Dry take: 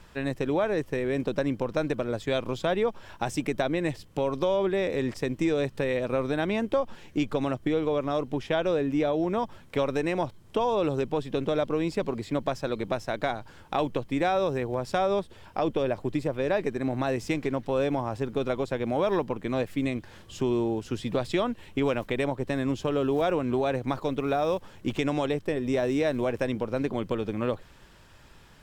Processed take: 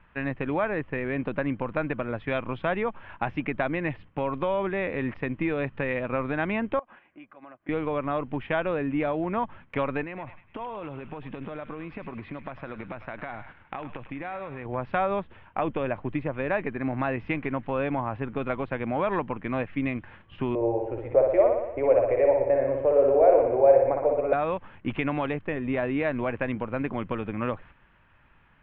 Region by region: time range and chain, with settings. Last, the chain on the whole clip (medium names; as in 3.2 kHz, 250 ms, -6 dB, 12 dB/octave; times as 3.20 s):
6.79–7.69 s: three-band isolator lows -18 dB, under 310 Hz, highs -13 dB, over 2.7 kHz + compression 5:1, threshold -43 dBFS + comb of notches 450 Hz
10.03–14.66 s: compression 16:1, threshold -31 dBFS + band-passed feedback delay 103 ms, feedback 71%, band-pass 2.5 kHz, level -8 dB
20.55–24.33 s: FFT filter 100 Hz 0 dB, 200 Hz -26 dB, 300 Hz -5 dB, 550 Hz +14 dB, 1.2 kHz -12 dB, 2.2 kHz -9 dB, 3.3 kHz -25 dB, 9.8 kHz +2 dB + flutter echo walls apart 10.3 m, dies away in 0.9 s
whole clip: steep low-pass 2.7 kHz 36 dB/octave; gate -47 dBFS, range -7 dB; FFT filter 270 Hz 0 dB, 400 Hz -5 dB, 1.1 kHz +4 dB